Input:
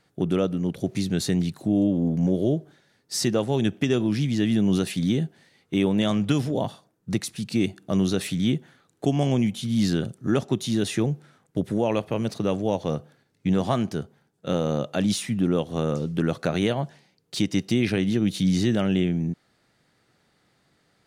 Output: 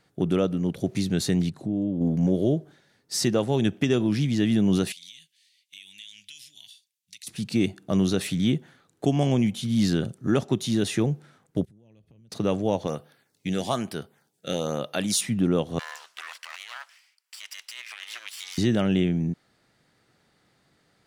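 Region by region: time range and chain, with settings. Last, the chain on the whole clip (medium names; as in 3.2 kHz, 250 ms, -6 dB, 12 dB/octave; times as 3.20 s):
1.49–2.01 s: low-pass 9.8 kHz + tilt shelf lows +4.5 dB, about 680 Hz + compression 1.5:1, threshold -38 dBFS
4.92–7.27 s: inverse Chebyshev high-pass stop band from 1.3 kHz + compression 4:1, threshold -41 dBFS
11.65–12.32 s: amplifier tone stack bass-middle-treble 10-0-1 + compression 16:1, threshold -51 dBFS
12.87–15.21 s: tilt EQ +2.5 dB/octave + LFO notch sine 1.1 Hz 970–7600 Hz
15.79–18.58 s: comb filter that takes the minimum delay 0.38 ms + high-pass 1.2 kHz 24 dB/octave + compressor with a negative ratio -40 dBFS
whole clip: none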